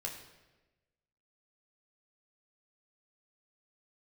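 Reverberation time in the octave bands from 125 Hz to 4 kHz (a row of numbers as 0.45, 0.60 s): 1.4, 1.3, 1.3, 1.0, 1.1, 0.90 s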